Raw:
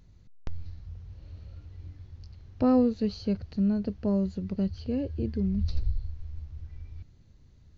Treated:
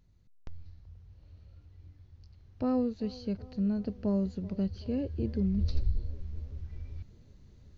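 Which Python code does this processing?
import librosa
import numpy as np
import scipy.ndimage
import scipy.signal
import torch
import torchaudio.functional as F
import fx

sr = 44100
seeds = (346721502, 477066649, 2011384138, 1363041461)

y = fx.rider(x, sr, range_db=5, speed_s=2.0)
y = fx.echo_wet_bandpass(y, sr, ms=381, feedback_pct=64, hz=530.0, wet_db=-18.0)
y = F.gain(torch.from_numpy(y), -4.0).numpy()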